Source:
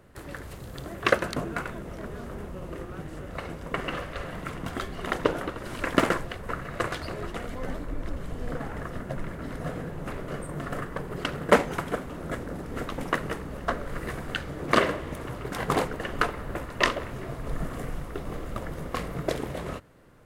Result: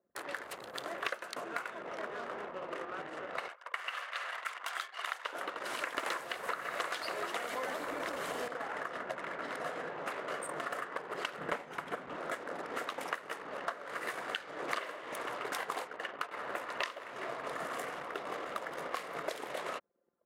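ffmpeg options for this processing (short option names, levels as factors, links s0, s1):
-filter_complex "[0:a]asettb=1/sr,asplit=3[s0][s1][s2];[s0]atrim=end=3.484[s3];[s1]atrim=start=3.48:end=5.33,asetpts=PTS-STARTPTS,afade=t=in:d=0.004:c=qsin,afade=t=out:st=1.846:d=0.004:c=qsin,highpass=1000[s4];[s2]atrim=start=5.326[s5];[s3][s4]acrossfade=d=0.004:c1=hsin:c2=qsin[s6];[s6][s5]acrossfade=d=0.004:c1=qsin:c2=hsin,asettb=1/sr,asplit=3[s7][s8][s9];[s7]atrim=end=6.064[s10];[s8]atrim=start=6.06:end=8.48,asetpts=PTS-STARTPTS,afade=t=in:d=0.004:c=qsin,afade=t=out:st=2.416:d=0.004:c=qsin,aeval=exprs='0.282*sin(PI/2*2.51*val(0)/0.282)':c=same[s11];[s9]atrim=start=8.476[s12];[s10][s11]acrossfade=d=0.004:c1=hsin:c2=qsin[s13];[s13][s12]acrossfade=d=0.004:c1=qsin:c2=hsin,asettb=1/sr,asplit=3[s14][s15][s16];[s14]atrim=end=11.384[s17];[s15]atrim=start=11.38:end=12.16,asetpts=PTS-STARTPTS,afade=t=in:d=0.004:c=qsin,afade=t=out:st=0.776:d=0.004:c=qsin,bass=f=250:g=13,treble=f=4000:g=-6[s18];[s16]atrim=start=12.156[s19];[s17][s18]acrossfade=d=0.004:c1=hsin:c2=qsin[s20];[s20][s19]acrossfade=d=0.004:c1=qsin:c2=hsin,asplit=2[s21][s22];[s21]atrim=end=16.31,asetpts=PTS-STARTPTS,afade=t=out:st=15.51:d=0.8:silence=0.316228[s23];[s22]atrim=start=16.31,asetpts=PTS-STARTPTS,afade=t=in:d=0.004:c=hsin:silence=0.316228[s24];[s23][s24]concat=n=2:v=0:a=1,anlmdn=0.0398,highpass=650,acompressor=threshold=0.01:ratio=8,volume=1.88"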